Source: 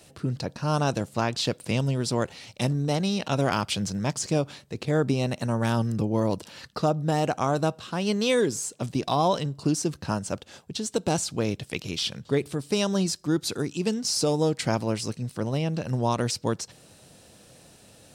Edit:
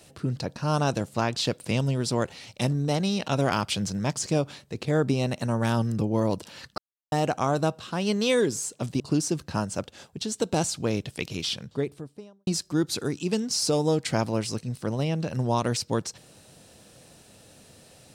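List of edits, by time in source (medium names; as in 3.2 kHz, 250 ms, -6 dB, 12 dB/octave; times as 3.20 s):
6.78–7.12 s: mute
9.00–9.54 s: delete
11.92–13.01 s: studio fade out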